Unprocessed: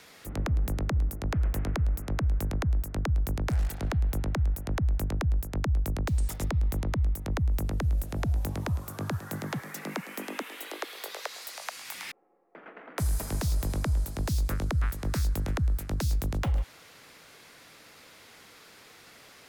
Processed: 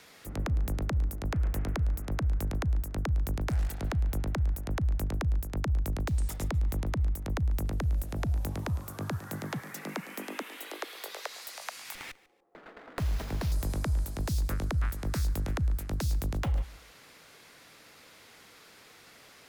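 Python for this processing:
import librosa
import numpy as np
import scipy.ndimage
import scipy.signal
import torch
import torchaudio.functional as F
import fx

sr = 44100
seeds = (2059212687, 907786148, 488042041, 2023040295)

y = fx.echo_feedback(x, sr, ms=144, feedback_pct=24, wet_db=-21.0)
y = fx.running_max(y, sr, window=5, at=(11.95, 13.52))
y = y * 10.0 ** (-2.0 / 20.0)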